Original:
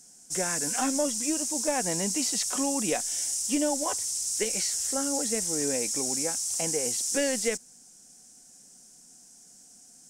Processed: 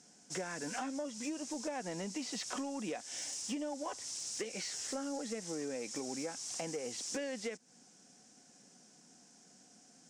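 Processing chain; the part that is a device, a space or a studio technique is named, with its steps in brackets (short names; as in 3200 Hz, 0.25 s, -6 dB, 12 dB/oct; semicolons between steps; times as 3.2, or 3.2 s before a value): AM radio (BPF 140–3800 Hz; compressor 10:1, threshold -37 dBFS, peak gain reduction 14.5 dB; soft clip -30 dBFS, distortion -23 dB); gain +1.5 dB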